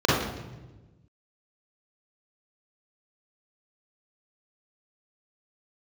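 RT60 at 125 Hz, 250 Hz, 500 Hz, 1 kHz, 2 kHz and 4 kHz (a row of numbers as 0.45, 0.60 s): 1.8, 1.6, 1.3, 1.0, 0.95, 0.85 s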